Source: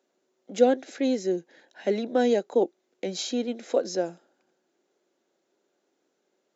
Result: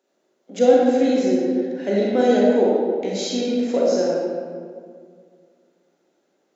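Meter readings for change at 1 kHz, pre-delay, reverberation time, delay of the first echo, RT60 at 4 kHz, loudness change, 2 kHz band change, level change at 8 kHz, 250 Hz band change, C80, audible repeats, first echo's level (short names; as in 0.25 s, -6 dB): +7.0 dB, 30 ms, 2.0 s, none, 1.1 s, +7.5 dB, +6.0 dB, n/a, +9.0 dB, -1.0 dB, none, none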